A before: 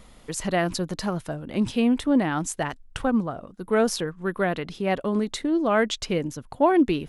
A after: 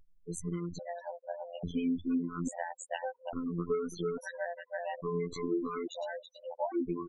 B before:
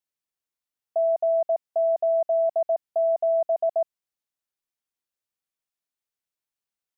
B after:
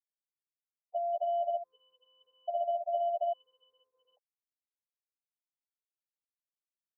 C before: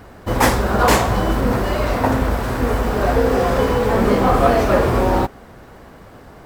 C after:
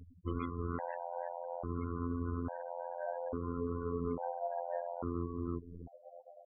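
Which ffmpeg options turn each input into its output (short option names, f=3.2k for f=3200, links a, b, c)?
-filter_complex "[0:a]afftfilt=real='hypot(re,im)*cos(PI*b)':imag='0':win_size=2048:overlap=0.75,dynaudnorm=f=180:g=17:m=10dB,highshelf=f=5.2k:g=3,asplit=2[a][b];[b]aecho=0:1:325:0.501[c];[a][c]amix=inputs=2:normalize=0,acompressor=threshold=-26dB:ratio=12,asplit=2[d][e];[e]acrusher=samples=12:mix=1:aa=0.000001,volume=-11dB[f];[d][f]amix=inputs=2:normalize=0,afftfilt=real='re*gte(hypot(re,im),0.0282)':imag='im*gte(hypot(re,im),0.0282)':win_size=1024:overlap=0.75,asuperstop=centerf=5000:order=12:qfactor=3.7,afftfilt=real='re*gt(sin(2*PI*0.59*pts/sr)*(1-2*mod(floor(b*sr/1024/500),2)),0)':imag='im*gt(sin(2*PI*0.59*pts/sr)*(1-2*mod(floor(b*sr/1024/500),2)),0)':win_size=1024:overlap=0.75,volume=-4dB"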